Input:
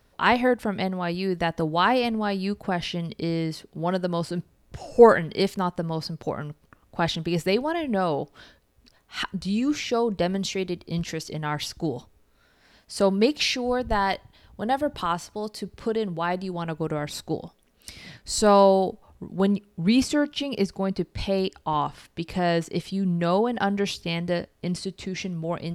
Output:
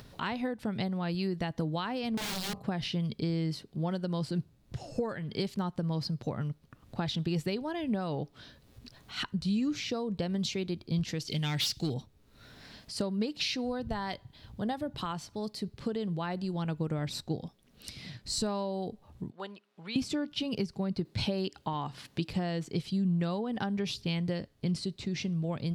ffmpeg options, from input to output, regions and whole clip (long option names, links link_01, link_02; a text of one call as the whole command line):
ffmpeg -i in.wav -filter_complex "[0:a]asettb=1/sr,asplit=3[link_01][link_02][link_03];[link_01]atrim=end=2.174[link_04];[link_02]atrim=start=2.17:end=2.64,asetpts=PTS-STARTPTS,afade=type=in:duration=0.004:curve=qsin,afade=type=out:start_time=0.466:duration=0.004:curve=qsin,agate=range=-33dB:threshold=-40dB:ratio=3:release=100:detection=peak,aeval=exprs='(mod(17.8*val(0)+1,2)-1)/17.8':channel_layout=same,bandreject=frequency=46.69:width_type=h:width=4,bandreject=frequency=93.38:width_type=h:width=4,bandreject=frequency=140.07:width_type=h:width=4,bandreject=frequency=186.76:width_type=h:width=4,bandreject=frequency=233.45:width_type=h:width=4,bandreject=frequency=280.14:width_type=h:width=4,bandreject=frequency=326.83:width_type=h:width=4,bandreject=frequency=373.52:width_type=h:width=4,bandreject=frequency=420.21:width_type=h:width=4,bandreject=frequency=466.9:width_type=h:width=4,bandreject=frequency=513.59:width_type=h:width=4,bandreject=frequency=560.28:width_type=h:width=4,bandreject=frequency=606.97:width_type=h:width=4,bandreject=frequency=653.66:width_type=h:width=4,bandreject=frequency=700.35:width_type=h:width=4,bandreject=frequency=747.04:width_type=h:width=4,bandreject=frequency=793.73:width_type=h:width=4,bandreject=frequency=840.42:width_type=h:width=4,bandreject=frequency=887.11:width_type=h:width=4,bandreject=frequency=933.8:width_type=h:width=4,bandreject=frequency=980.49:width_type=h:width=4,bandreject=frequency=1027.18:width_type=h:width=4,bandreject=frequency=1073.87:width_type=h:width=4,bandreject=frequency=1120.56:width_type=h:width=4,bandreject=frequency=1167.25:width_type=h:width=4,bandreject=frequency=1213.94:width_type=h:width=4,bandreject=frequency=1260.63:width_type=h:width=4[link_05];[link_03]atrim=start=2.636[link_06];[link_04][link_05]acrossfade=duration=0.004:curve1=hsin:curve2=qsin[link_07];[link_07][link_06]acrossfade=duration=0.004:curve1=qsin:curve2=hsin,asettb=1/sr,asplit=3[link_08][link_09][link_10];[link_08]atrim=end=11.284[link_11];[link_09]atrim=start=11.28:end=11.94,asetpts=PTS-STARTPTS,afade=type=in:duration=0.004:curve=qsin,afade=type=out:start_time=0.656:duration=0.004:curve=qsin,highshelf=frequency=1900:width_type=q:width=1.5:gain=10.5,asoftclip=type=hard:threshold=-21.5dB[link_12];[link_10]atrim=start=11.936[link_13];[link_11][link_12]acrossfade=duration=0.004:curve1=hsin:curve2=qsin[link_14];[link_14][link_13]acrossfade=duration=0.004:curve1=qsin:curve2=hsin,asettb=1/sr,asplit=3[link_15][link_16][link_17];[link_15]atrim=end=19.304[link_18];[link_16]atrim=start=19.3:end=19.96,asetpts=PTS-STARTPTS,afade=type=in:duration=0.004:curve=qsin,afade=type=out:start_time=0.656:duration=0.004:curve=qsin,highpass=870,aemphasis=mode=reproduction:type=75kf[link_19];[link_17]atrim=start=19.956[link_20];[link_18][link_19]acrossfade=duration=0.004:curve1=hsin:curve2=qsin[link_21];[link_21][link_20]acrossfade=duration=0.004:curve1=qsin:curve2=hsin,asettb=1/sr,asplit=3[link_22][link_23][link_24];[link_22]atrim=end=21.054[link_25];[link_23]atrim=start=21.05:end=22.3,asetpts=PTS-STARTPTS,afade=type=in:duration=0.004:curve=qsin,afade=type=out:start_time=1.246:duration=0.004:curve=qsin,highpass=frequency=140:poles=1,acontrast=27[link_26];[link_24]atrim=start=22.296[link_27];[link_25][link_26]acrossfade=duration=0.004:curve1=hsin:curve2=qsin[link_28];[link_28][link_27]acrossfade=duration=0.004:curve1=qsin:curve2=hsin,acompressor=threshold=-24dB:ratio=12,equalizer=frequency=125:width_type=o:width=1:gain=11,equalizer=frequency=250:width_type=o:width=1:gain=4,equalizer=frequency=4000:width_type=o:width=1:gain=6,acompressor=mode=upward:threshold=-32dB:ratio=2.5,volume=-8dB" out.wav